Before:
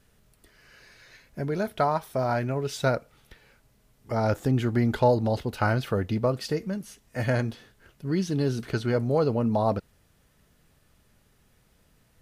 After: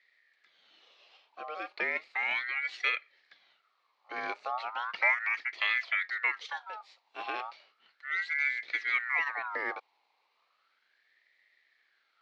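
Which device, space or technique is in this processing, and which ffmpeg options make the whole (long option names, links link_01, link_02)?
voice changer toy: -filter_complex "[0:a]aeval=exprs='val(0)*sin(2*PI*1400*n/s+1400*0.35/0.35*sin(2*PI*0.35*n/s))':channel_layout=same,highpass=510,equalizer=frequency=1000:width_type=q:width=4:gain=-6,equalizer=frequency=1500:width_type=q:width=4:gain=-6,equalizer=frequency=2200:width_type=q:width=4:gain=8,equalizer=frequency=4200:width_type=q:width=4:gain=8,lowpass=frequency=4600:width=0.5412,lowpass=frequency=4600:width=1.3066,asettb=1/sr,asplit=3[link_01][link_02][link_03];[link_01]atrim=end=5.584[link_04];[link_02]atrim=start=5.58:end=6.04,asetpts=PTS-STARTPTS,afade=type=in:duration=0.004:curve=qsin,afade=type=out:start_time=0.456:duration=0.004:curve=qsin,lowshelf=frequency=590:width_type=q:width=1.5:gain=-12[link_05];[link_03]atrim=start=6.036[link_06];[link_04][link_05]acrossfade=duration=0.004:curve1=hsin:curve2=qsin[link_07];[link_07][link_06]acrossfade=duration=0.004:curve1=qsin:curve2=hsin,volume=-5.5dB"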